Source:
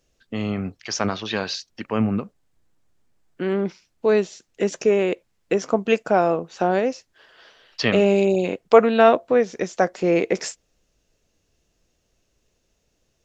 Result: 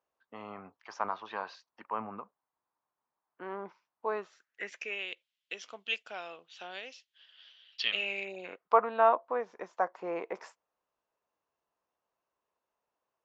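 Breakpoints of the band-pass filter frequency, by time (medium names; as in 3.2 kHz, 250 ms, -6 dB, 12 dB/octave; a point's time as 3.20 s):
band-pass filter, Q 3.9
4.08 s 990 Hz
5.08 s 3.2 kHz
7.90 s 3.2 kHz
8.77 s 1 kHz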